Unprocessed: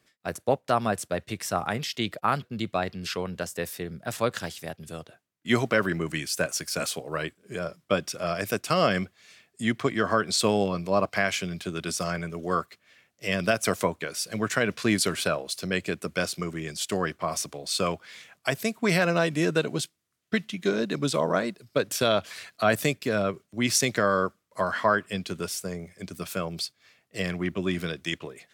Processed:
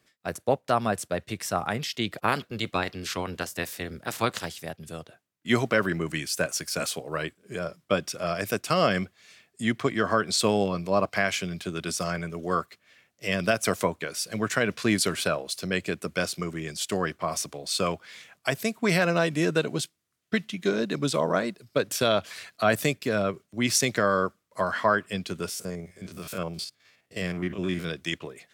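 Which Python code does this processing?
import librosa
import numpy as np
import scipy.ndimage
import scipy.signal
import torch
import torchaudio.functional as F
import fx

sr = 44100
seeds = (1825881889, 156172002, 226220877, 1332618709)

y = fx.spec_clip(x, sr, under_db=13, at=(2.14, 4.44), fade=0.02)
y = fx.spec_steps(y, sr, hold_ms=50, at=(25.48, 27.88), fade=0.02)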